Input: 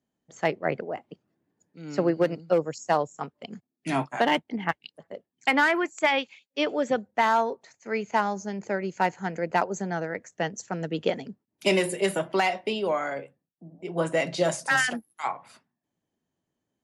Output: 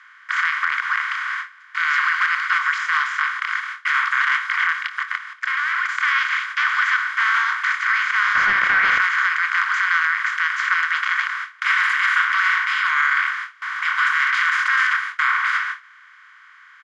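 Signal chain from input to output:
compressor on every frequency bin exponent 0.2
noise gate with hold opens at −13 dBFS
Butterworth high-pass 1,100 Hz 96 dB per octave
parametric band 2,700 Hz −8.5 dB 0.4 octaves
0:04.83–0:05.89: output level in coarse steps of 13 dB
0:08.35–0:09.00: mid-hump overdrive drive 15 dB, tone 2,700 Hz, clips at −6 dBFS
head-to-tape spacing loss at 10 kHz 34 dB
double-tracking delay 25 ms −11.5 dB
boost into a limiter +17.5 dB
level −7.5 dB

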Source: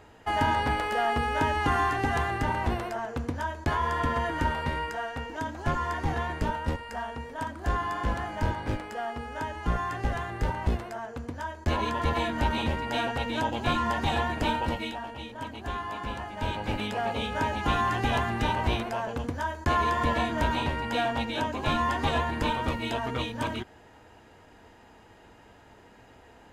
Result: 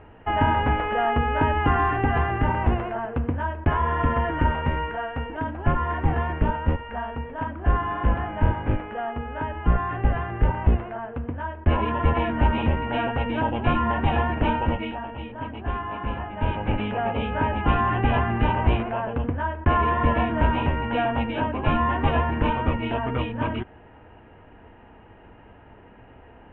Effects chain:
elliptic low-pass filter 2,900 Hz, stop band 50 dB
spectral tilt −1.5 dB per octave
level +3.5 dB

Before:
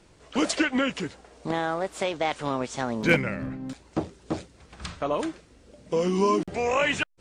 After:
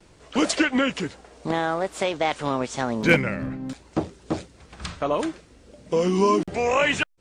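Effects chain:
noise gate with hold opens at −48 dBFS
level +3 dB

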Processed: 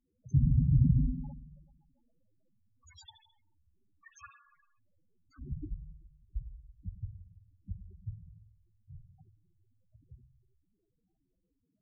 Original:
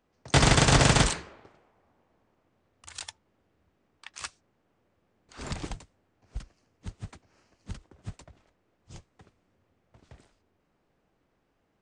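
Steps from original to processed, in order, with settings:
spring reverb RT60 1.3 s, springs 47/55 ms, chirp 40 ms, DRR 6 dB
0:03.05–0:04.19: low-pass that shuts in the quiet parts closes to 1,500 Hz, open at −44.5 dBFS
spectral peaks only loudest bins 4

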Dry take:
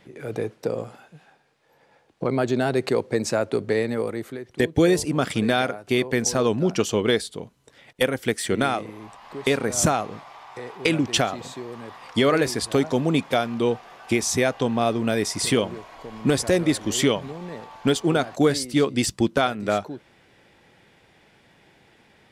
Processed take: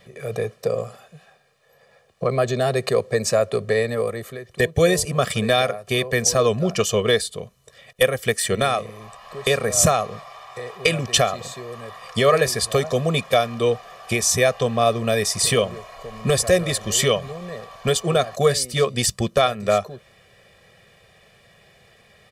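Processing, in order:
high-shelf EQ 6,900 Hz +6 dB
comb filter 1.7 ms, depth 97%

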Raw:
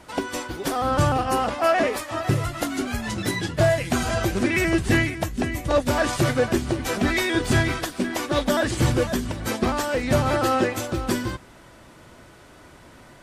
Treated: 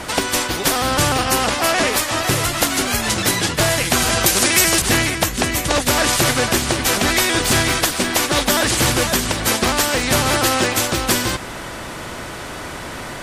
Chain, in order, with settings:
0:04.26–0:04.82: bass and treble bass −8 dB, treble +14 dB
every bin compressed towards the loudest bin 2 to 1
level +7 dB

